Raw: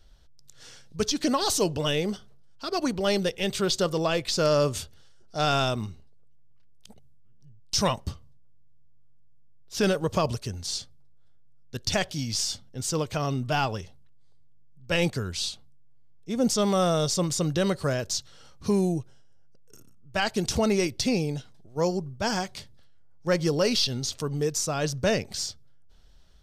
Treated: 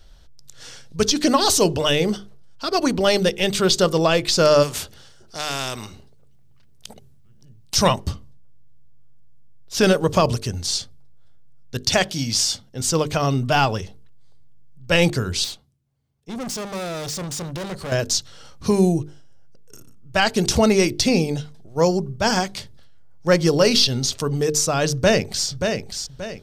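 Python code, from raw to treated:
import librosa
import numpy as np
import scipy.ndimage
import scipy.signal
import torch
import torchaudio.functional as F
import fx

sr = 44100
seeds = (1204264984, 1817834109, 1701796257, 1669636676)

y = fx.spectral_comp(x, sr, ratio=2.0, at=(4.62, 7.75), fade=0.02)
y = fx.low_shelf(y, sr, hz=68.0, db=-11.5, at=(11.82, 12.81))
y = fx.tube_stage(y, sr, drive_db=35.0, bias=0.55, at=(15.44, 17.92))
y = fx.echo_throw(y, sr, start_s=24.93, length_s=0.55, ms=580, feedback_pct=35, wet_db=-6.0)
y = fx.hum_notches(y, sr, base_hz=50, count=9)
y = y * librosa.db_to_amplitude(8.0)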